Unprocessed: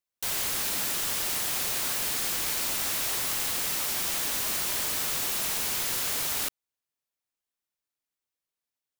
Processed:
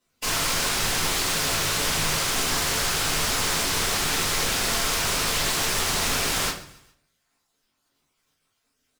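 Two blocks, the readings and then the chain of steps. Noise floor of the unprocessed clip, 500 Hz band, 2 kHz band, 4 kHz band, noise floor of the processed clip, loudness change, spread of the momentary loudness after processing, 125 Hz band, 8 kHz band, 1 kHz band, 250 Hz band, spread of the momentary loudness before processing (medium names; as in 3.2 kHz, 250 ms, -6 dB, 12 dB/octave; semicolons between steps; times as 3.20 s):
under -85 dBFS, +10.0 dB, +9.0 dB, +7.5 dB, -74 dBFS, +4.0 dB, 0 LU, +14.0 dB, +4.5 dB, +10.0 dB, +10.5 dB, 0 LU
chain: random holes in the spectrogram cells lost 65%; high-pass 53 Hz; in parallel at 0 dB: peak limiter -28.5 dBFS, peak gain reduction 8.5 dB; on the sum: small resonant body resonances 250/4000 Hz, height 11 dB; sample-rate reducer 18 kHz, jitter 0%; wavefolder -34 dBFS; on a send: feedback delay 136 ms, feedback 43%, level -19 dB; on the sum: simulated room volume 31 m³, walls mixed, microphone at 1.3 m; loudspeaker Doppler distortion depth 0.4 ms; trim +7 dB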